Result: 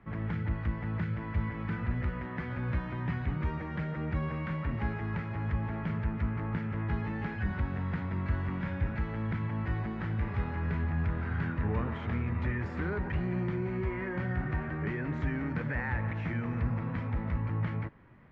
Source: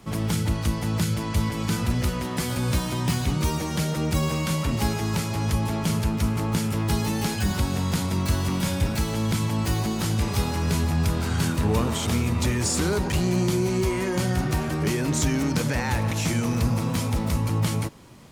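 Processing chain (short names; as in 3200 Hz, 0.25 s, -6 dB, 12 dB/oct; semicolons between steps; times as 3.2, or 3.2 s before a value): ladder low-pass 2100 Hz, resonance 55%; low shelf 150 Hz +7 dB; gain -2 dB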